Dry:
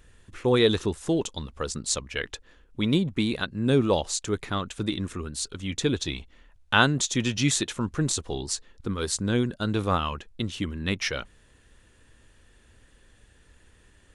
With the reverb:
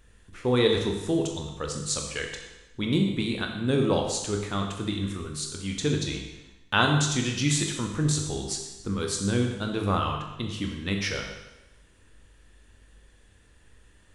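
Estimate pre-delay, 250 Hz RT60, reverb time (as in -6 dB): 20 ms, 1.0 s, 1.0 s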